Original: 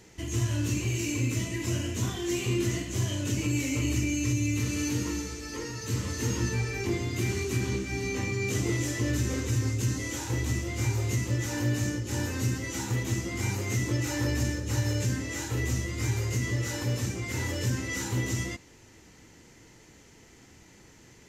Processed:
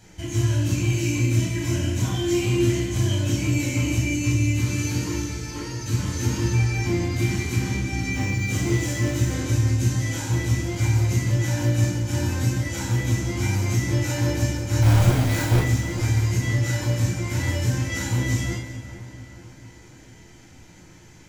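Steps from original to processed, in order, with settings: 14.82–15.6 half-waves squared off; split-band echo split 1800 Hz, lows 0.441 s, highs 0.18 s, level -12 dB; reverb RT60 0.40 s, pre-delay 12 ms, DRR -1.5 dB; 8.12–9.32 added noise blue -55 dBFS; gain -1.5 dB

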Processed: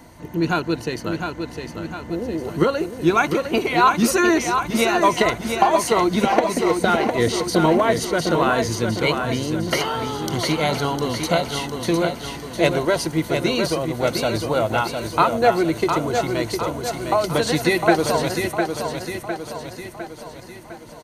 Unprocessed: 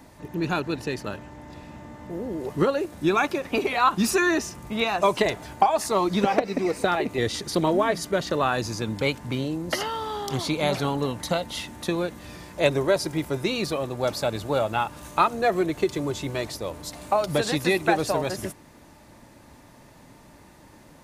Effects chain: ripple EQ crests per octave 1.9, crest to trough 7 dB; feedback echo 0.706 s, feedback 52%, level -6 dB; gain +3.5 dB

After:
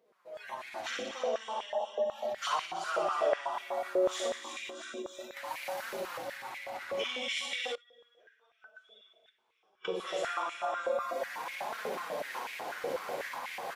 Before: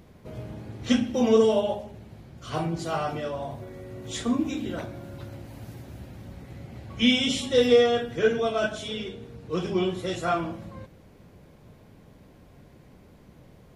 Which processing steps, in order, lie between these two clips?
recorder AGC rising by 24 dB/s; flutter echo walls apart 10.2 m, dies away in 1.1 s; flange 0.34 Hz, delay 4.3 ms, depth 8.7 ms, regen -6%; soft clip -15 dBFS, distortion -20 dB; 4.7–5.37 gate -22 dBFS, range -12 dB; feedback echo 0.319 s, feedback 46%, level -9.5 dB; 7.75–9.85 flipped gate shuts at -20 dBFS, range -25 dB; spectral noise reduction 17 dB; compressor 3:1, threshold -35 dBFS, peak gain reduction 12.5 dB; stepped high-pass 8.1 Hz 500–2200 Hz

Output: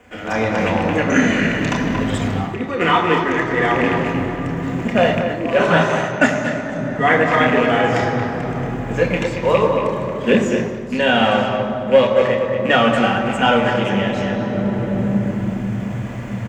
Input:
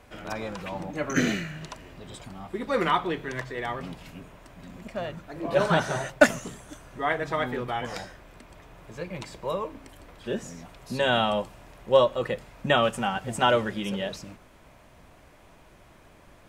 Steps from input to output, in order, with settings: rattling part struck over -34 dBFS, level -26 dBFS; high shelf 4500 Hz -8.5 dB; bit-crush 11-bit; sample leveller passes 1; 0.43–2.8 compressor 6:1, threshold -31 dBFS, peak gain reduction 14.5 dB; speakerphone echo 0.23 s, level -6 dB; reverb RT60 3.5 s, pre-delay 3 ms, DRR 1 dB; AGC gain up to 12 dB; thirty-one-band EQ 160 Hz -5 dB, 2000 Hz +4 dB, 6300 Hz +11 dB; gain -1.5 dB

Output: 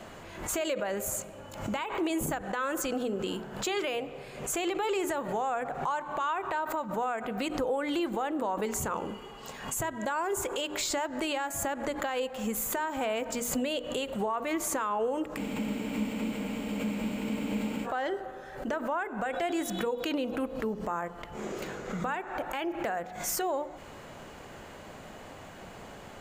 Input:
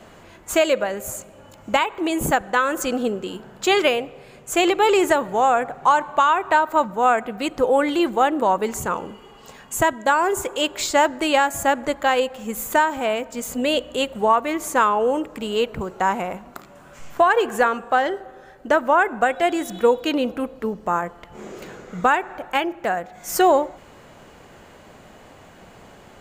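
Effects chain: compressor 6:1, threshold -26 dBFS, peak gain reduction 14 dB; notches 60/120/180/240/300/360/420/480 Hz; limiter -22.5 dBFS, peak gain reduction 8.5 dB; spectral freeze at 15.4, 2.45 s; backwards sustainer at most 81 dB/s

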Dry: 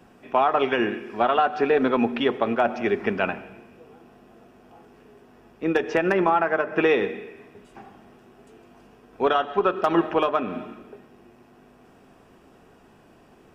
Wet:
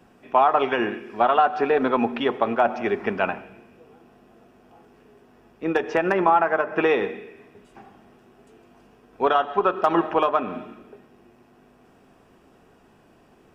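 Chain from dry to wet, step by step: dynamic EQ 920 Hz, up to +6 dB, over -35 dBFS, Q 1.1; gain -2 dB

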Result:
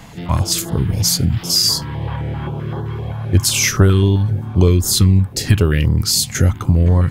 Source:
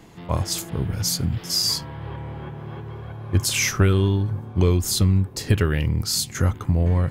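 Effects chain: in parallel at +1.5 dB: compressor, threshold -29 dBFS, peak gain reduction 15 dB; on the sum: stepped notch 7.7 Hz 360–2400 Hz; gain +4.5 dB

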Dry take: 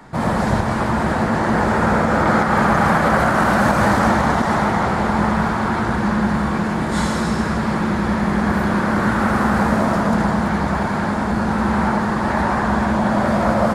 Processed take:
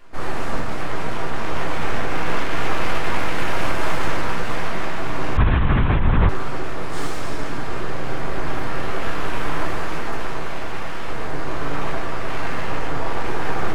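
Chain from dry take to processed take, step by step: 9.69–11.08 low shelf 160 Hz -9 dB; full-wave rectifier; shoebox room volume 53 m³, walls mixed, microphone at 0.63 m; 5.37–6.29 LPC vocoder at 8 kHz whisper; gain -8.5 dB

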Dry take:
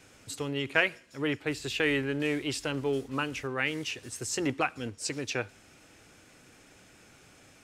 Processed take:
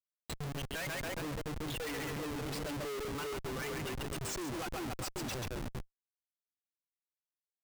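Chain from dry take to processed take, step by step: per-bin expansion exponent 3; 2.16–3.07 HPF 180 Hz 24 dB/oct; in parallel at -2.5 dB: compressor 16:1, threshold -43 dBFS, peak gain reduction 21.5 dB; on the sum: split-band echo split 450 Hz, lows 0.39 s, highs 0.137 s, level -3.5 dB; Schmitt trigger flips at -39 dBFS; gain -2 dB

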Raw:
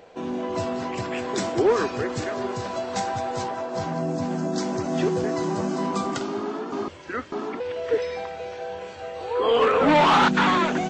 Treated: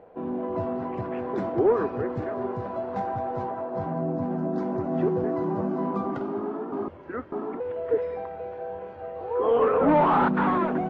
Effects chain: LPF 1100 Hz 12 dB/oct; on a send: reverb RT60 1.1 s, pre-delay 95 ms, DRR 23.5 dB; on the sum: gain -1 dB

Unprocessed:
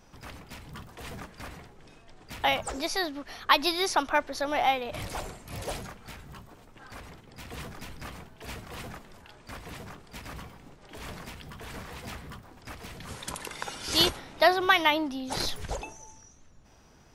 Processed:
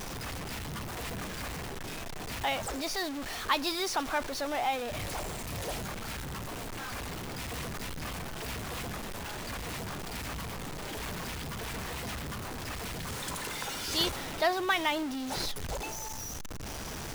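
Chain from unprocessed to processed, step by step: zero-crossing step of -25.5 dBFS; gain -8 dB

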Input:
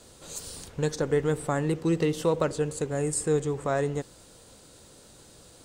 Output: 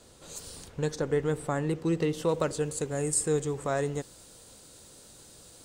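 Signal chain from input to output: high shelf 4500 Hz -2 dB, from 2.29 s +6.5 dB; gain -2.5 dB

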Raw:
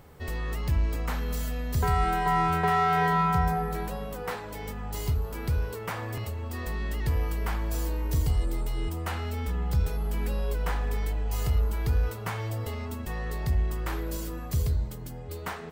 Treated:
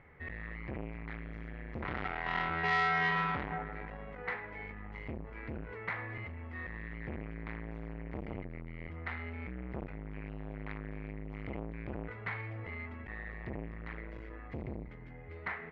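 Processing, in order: ladder low-pass 2200 Hz, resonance 75%; core saturation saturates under 1300 Hz; gain +3.5 dB

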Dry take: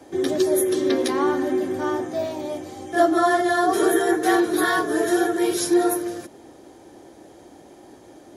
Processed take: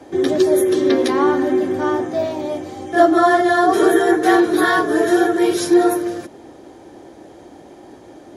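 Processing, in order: high shelf 6500 Hz -10 dB; gain +5.5 dB

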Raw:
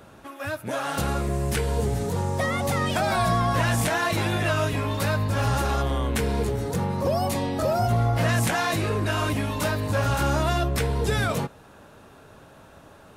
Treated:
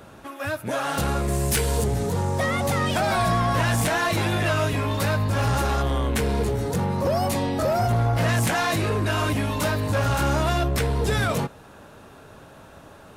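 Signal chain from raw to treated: 1.28–1.84 high shelf 4000 Hz +11 dB; soft clip -18.5 dBFS, distortion -18 dB; gain +3 dB

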